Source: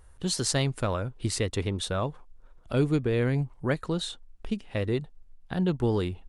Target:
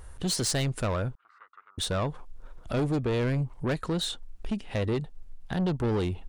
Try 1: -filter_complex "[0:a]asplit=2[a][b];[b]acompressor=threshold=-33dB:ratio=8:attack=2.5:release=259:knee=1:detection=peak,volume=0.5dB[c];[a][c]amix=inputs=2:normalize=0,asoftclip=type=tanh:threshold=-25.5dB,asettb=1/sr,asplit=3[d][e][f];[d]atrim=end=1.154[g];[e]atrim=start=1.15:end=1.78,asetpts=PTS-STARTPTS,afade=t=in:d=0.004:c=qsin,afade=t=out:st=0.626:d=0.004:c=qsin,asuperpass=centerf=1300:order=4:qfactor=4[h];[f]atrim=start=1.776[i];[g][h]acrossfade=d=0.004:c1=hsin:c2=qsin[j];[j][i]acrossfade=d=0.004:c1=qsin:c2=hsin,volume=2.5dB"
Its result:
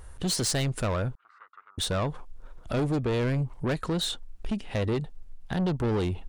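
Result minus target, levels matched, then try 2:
compressor: peak gain reduction -8 dB
-filter_complex "[0:a]asplit=2[a][b];[b]acompressor=threshold=-42dB:ratio=8:attack=2.5:release=259:knee=1:detection=peak,volume=0.5dB[c];[a][c]amix=inputs=2:normalize=0,asoftclip=type=tanh:threshold=-25.5dB,asettb=1/sr,asplit=3[d][e][f];[d]atrim=end=1.154[g];[e]atrim=start=1.15:end=1.78,asetpts=PTS-STARTPTS,afade=t=in:d=0.004:c=qsin,afade=t=out:st=0.626:d=0.004:c=qsin,asuperpass=centerf=1300:order=4:qfactor=4[h];[f]atrim=start=1.776[i];[g][h]acrossfade=d=0.004:c1=hsin:c2=qsin[j];[j][i]acrossfade=d=0.004:c1=qsin:c2=hsin,volume=2.5dB"

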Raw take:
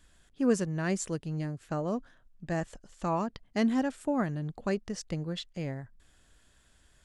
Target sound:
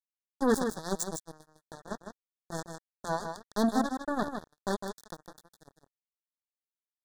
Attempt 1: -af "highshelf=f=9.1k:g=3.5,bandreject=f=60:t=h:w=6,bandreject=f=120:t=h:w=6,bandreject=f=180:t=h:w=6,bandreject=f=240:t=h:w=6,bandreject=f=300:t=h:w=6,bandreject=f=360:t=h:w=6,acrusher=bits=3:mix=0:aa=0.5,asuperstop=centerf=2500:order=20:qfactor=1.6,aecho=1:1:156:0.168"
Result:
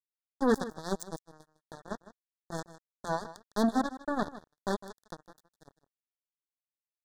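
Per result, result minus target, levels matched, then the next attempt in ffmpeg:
8000 Hz band -6.5 dB; echo-to-direct -8.5 dB
-af "highshelf=f=9.1k:g=15,bandreject=f=60:t=h:w=6,bandreject=f=120:t=h:w=6,bandreject=f=180:t=h:w=6,bandreject=f=240:t=h:w=6,bandreject=f=300:t=h:w=6,bandreject=f=360:t=h:w=6,acrusher=bits=3:mix=0:aa=0.5,asuperstop=centerf=2500:order=20:qfactor=1.6,aecho=1:1:156:0.168"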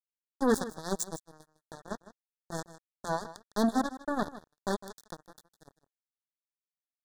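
echo-to-direct -8.5 dB
-af "highshelf=f=9.1k:g=15,bandreject=f=60:t=h:w=6,bandreject=f=120:t=h:w=6,bandreject=f=180:t=h:w=6,bandreject=f=240:t=h:w=6,bandreject=f=300:t=h:w=6,bandreject=f=360:t=h:w=6,acrusher=bits=3:mix=0:aa=0.5,asuperstop=centerf=2500:order=20:qfactor=1.6,aecho=1:1:156:0.447"

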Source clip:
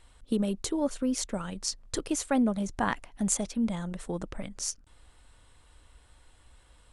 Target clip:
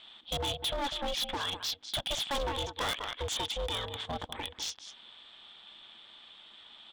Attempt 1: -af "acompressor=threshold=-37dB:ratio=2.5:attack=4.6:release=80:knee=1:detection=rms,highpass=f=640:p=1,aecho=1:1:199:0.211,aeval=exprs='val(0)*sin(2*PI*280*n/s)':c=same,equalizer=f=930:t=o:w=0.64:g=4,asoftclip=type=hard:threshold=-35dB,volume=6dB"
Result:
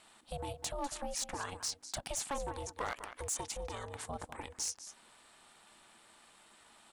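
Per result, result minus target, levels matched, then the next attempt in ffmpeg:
compressor: peak gain reduction +11 dB; 4000 Hz band -7.0 dB
-af "highpass=f=640:p=1,aecho=1:1:199:0.211,aeval=exprs='val(0)*sin(2*PI*280*n/s)':c=same,equalizer=f=930:t=o:w=0.64:g=4,asoftclip=type=hard:threshold=-35dB,volume=6dB"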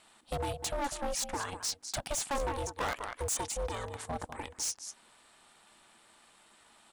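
4000 Hz band -8.0 dB
-af "highpass=f=640:p=1,aecho=1:1:199:0.211,aeval=exprs='val(0)*sin(2*PI*280*n/s)':c=same,lowpass=f=3.4k:t=q:w=12,equalizer=f=930:t=o:w=0.64:g=4,asoftclip=type=hard:threshold=-35dB,volume=6dB"

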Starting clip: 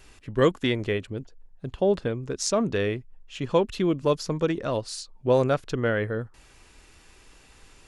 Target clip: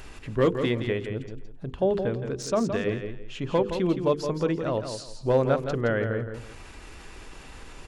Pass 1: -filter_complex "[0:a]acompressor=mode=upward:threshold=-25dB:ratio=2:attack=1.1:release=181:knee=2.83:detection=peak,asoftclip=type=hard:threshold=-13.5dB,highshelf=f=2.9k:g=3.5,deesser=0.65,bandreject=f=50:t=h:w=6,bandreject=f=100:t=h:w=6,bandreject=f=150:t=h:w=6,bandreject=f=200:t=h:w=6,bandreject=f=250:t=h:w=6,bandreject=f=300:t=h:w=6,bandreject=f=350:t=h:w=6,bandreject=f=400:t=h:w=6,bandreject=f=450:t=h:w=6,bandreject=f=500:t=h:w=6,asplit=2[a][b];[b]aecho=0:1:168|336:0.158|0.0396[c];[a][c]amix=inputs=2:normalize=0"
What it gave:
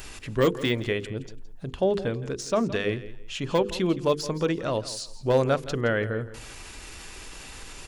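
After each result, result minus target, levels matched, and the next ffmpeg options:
echo-to-direct -8 dB; 4000 Hz band +5.5 dB
-filter_complex "[0:a]acompressor=mode=upward:threshold=-25dB:ratio=2:attack=1.1:release=181:knee=2.83:detection=peak,asoftclip=type=hard:threshold=-13.5dB,highshelf=f=2.9k:g=3.5,deesser=0.65,bandreject=f=50:t=h:w=6,bandreject=f=100:t=h:w=6,bandreject=f=150:t=h:w=6,bandreject=f=200:t=h:w=6,bandreject=f=250:t=h:w=6,bandreject=f=300:t=h:w=6,bandreject=f=350:t=h:w=6,bandreject=f=400:t=h:w=6,bandreject=f=450:t=h:w=6,bandreject=f=500:t=h:w=6,asplit=2[a][b];[b]aecho=0:1:168|336|504:0.398|0.0995|0.0249[c];[a][c]amix=inputs=2:normalize=0"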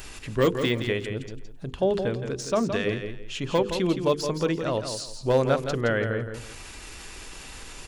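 4000 Hz band +5.5 dB
-filter_complex "[0:a]acompressor=mode=upward:threshold=-25dB:ratio=2:attack=1.1:release=181:knee=2.83:detection=peak,asoftclip=type=hard:threshold=-13.5dB,highshelf=f=2.9k:g=-8.5,deesser=0.65,bandreject=f=50:t=h:w=6,bandreject=f=100:t=h:w=6,bandreject=f=150:t=h:w=6,bandreject=f=200:t=h:w=6,bandreject=f=250:t=h:w=6,bandreject=f=300:t=h:w=6,bandreject=f=350:t=h:w=6,bandreject=f=400:t=h:w=6,bandreject=f=450:t=h:w=6,bandreject=f=500:t=h:w=6,asplit=2[a][b];[b]aecho=0:1:168|336|504:0.398|0.0995|0.0249[c];[a][c]amix=inputs=2:normalize=0"

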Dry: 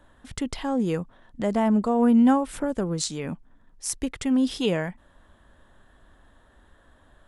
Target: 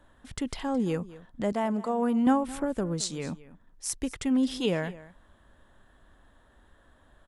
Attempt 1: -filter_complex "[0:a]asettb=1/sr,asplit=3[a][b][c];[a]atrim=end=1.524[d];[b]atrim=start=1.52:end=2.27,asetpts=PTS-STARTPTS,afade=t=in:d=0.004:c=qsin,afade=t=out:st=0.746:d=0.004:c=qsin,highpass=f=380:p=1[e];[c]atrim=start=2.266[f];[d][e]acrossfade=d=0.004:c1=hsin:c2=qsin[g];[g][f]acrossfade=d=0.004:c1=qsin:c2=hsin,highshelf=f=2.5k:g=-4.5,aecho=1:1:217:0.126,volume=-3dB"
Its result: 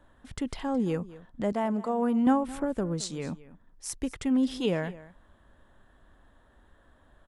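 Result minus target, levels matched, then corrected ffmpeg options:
4000 Hz band -3.0 dB
-filter_complex "[0:a]asettb=1/sr,asplit=3[a][b][c];[a]atrim=end=1.524[d];[b]atrim=start=1.52:end=2.27,asetpts=PTS-STARTPTS,afade=t=in:d=0.004:c=qsin,afade=t=out:st=0.746:d=0.004:c=qsin,highpass=f=380:p=1[e];[c]atrim=start=2.266[f];[d][e]acrossfade=d=0.004:c1=hsin:c2=qsin[g];[g][f]acrossfade=d=0.004:c1=qsin:c2=hsin,aecho=1:1:217:0.126,volume=-3dB"

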